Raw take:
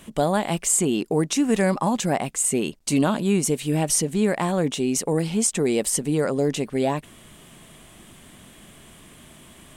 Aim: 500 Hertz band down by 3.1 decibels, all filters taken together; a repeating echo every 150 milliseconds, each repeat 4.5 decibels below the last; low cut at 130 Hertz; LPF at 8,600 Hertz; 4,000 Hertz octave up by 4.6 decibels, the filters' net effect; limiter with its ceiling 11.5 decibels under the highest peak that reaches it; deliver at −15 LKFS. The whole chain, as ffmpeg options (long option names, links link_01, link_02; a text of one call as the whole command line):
ffmpeg -i in.wav -af "highpass=130,lowpass=8600,equalizer=frequency=500:width_type=o:gain=-4,equalizer=frequency=4000:width_type=o:gain=6.5,alimiter=limit=-21dB:level=0:latency=1,aecho=1:1:150|300|450|600|750|900|1050|1200|1350:0.596|0.357|0.214|0.129|0.0772|0.0463|0.0278|0.0167|0.01,volume=13.5dB" out.wav